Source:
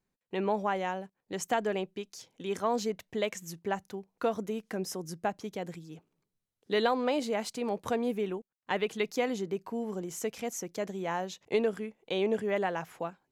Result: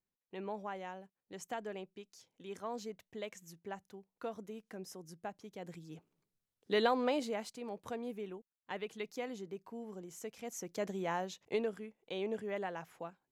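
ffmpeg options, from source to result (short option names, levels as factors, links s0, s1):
-af "volume=2,afade=t=in:st=5.53:d=0.41:silence=0.354813,afade=t=out:st=7.04:d=0.51:silence=0.398107,afade=t=in:st=10.38:d=0.53:silence=0.354813,afade=t=out:st=10.91:d=0.86:silence=0.446684"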